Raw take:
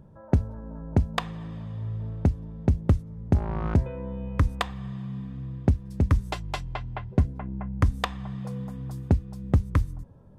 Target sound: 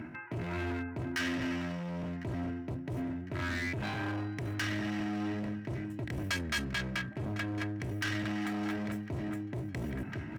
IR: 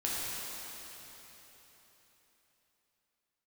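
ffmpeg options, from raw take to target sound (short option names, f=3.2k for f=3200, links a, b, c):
-filter_complex "[0:a]asetrate=70004,aresample=44100,atempo=0.629961,equalizer=f=2.1k:w=1.5:g=2,asplit=2[a][b];[b]highpass=f=720:p=1,volume=19dB,asoftclip=type=tanh:threshold=-10.5dB[c];[a][c]amix=inputs=2:normalize=0,lowpass=f=2.1k:p=1,volume=-6dB,equalizer=f=125:t=o:w=1:g=9,equalizer=f=500:t=o:w=1:g=-8,equalizer=f=1k:t=o:w=1:g=-9,equalizer=f=2k:t=o:w=1:g=8,equalizer=f=4k:t=o:w=1:g=-4,aecho=1:1:1055|2110|3165|4220:0.106|0.0498|0.0234|0.011,areverse,acompressor=threshold=-29dB:ratio=16,areverse,bandreject=f=144.4:t=h:w=4,bandreject=f=288.8:t=h:w=4,bandreject=f=433.2:t=h:w=4,bandreject=f=577.6:t=h:w=4,bandreject=f=722:t=h:w=4,bandreject=f=866.4:t=h:w=4,bandreject=f=1.0108k:t=h:w=4,bandreject=f=1.1552k:t=h:w=4,bandreject=f=1.2996k:t=h:w=4,bandreject=f=1.444k:t=h:w=4,bandreject=f=1.5884k:t=h:w=4,bandreject=f=1.7328k:t=h:w=4,bandreject=f=1.8772k:t=h:w=4,acrossover=split=3300[d][e];[d]asoftclip=type=hard:threshold=-37.5dB[f];[f][e]amix=inputs=2:normalize=0,highpass=53,aecho=1:1:3.1:0.4,volume=4.5dB"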